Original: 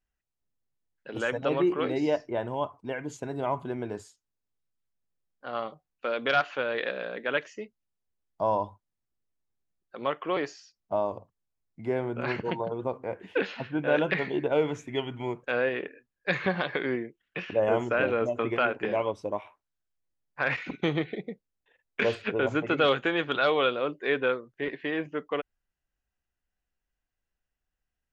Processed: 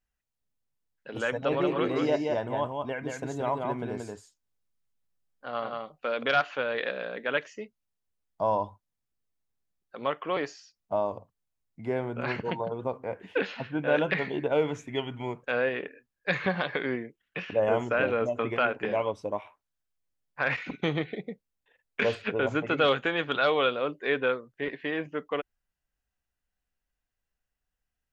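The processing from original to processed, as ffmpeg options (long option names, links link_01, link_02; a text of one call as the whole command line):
ffmpeg -i in.wav -filter_complex "[0:a]asettb=1/sr,asplit=3[link_01][link_02][link_03];[link_01]atrim=end=1.344[link_04];[link_02]atrim=start=1.34:end=6.23,asetpts=PTS-STARTPTS,afade=type=in:duration=0.004:curve=qsin,afade=type=out:start_time=4.886:duration=0.004:curve=qsin,aecho=1:1:179:0.668,atrim=end_sample=215649[link_05];[link_03]atrim=start=6.226[link_06];[link_04][link_05]acrossfade=duration=0.004:curve1=hsin:curve2=qsin[link_07];[link_07][link_06]acrossfade=duration=0.004:curve1=qsin:curve2=hsin,equalizer=frequency=350:width=7:gain=-5.5" out.wav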